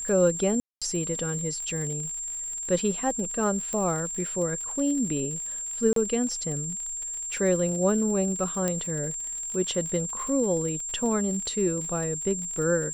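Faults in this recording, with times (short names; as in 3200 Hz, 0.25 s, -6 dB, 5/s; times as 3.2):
crackle 72/s -34 dBFS
tone 7400 Hz -31 dBFS
0.6–0.82 gap 0.216 s
3.73 pop -18 dBFS
5.93–5.96 gap 33 ms
8.68 pop -12 dBFS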